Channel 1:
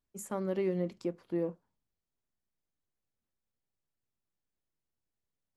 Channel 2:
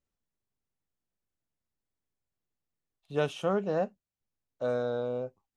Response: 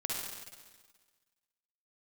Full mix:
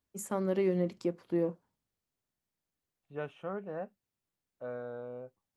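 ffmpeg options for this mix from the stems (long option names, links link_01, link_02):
-filter_complex "[0:a]highpass=56,volume=2.5dB[link_01];[1:a]highshelf=frequency=3100:width_type=q:width=1.5:gain=-14,volume=-10.5dB[link_02];[link_01][link_02]amix=inputs=2:normalize=0"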